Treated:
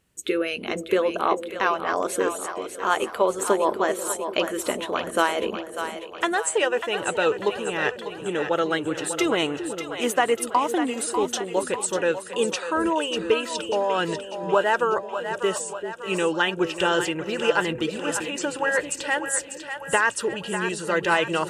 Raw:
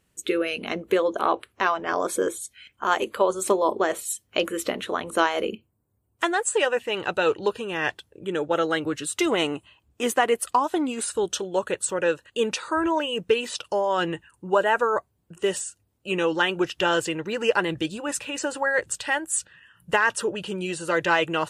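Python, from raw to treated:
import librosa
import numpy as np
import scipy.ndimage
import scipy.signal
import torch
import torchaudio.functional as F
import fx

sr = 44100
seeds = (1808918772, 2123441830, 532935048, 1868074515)

y = fx.echo_split(x, sr, split_hz=500.0, low_ms=390, high_ms=595, feedback_pct=52, wet_db=-8.5)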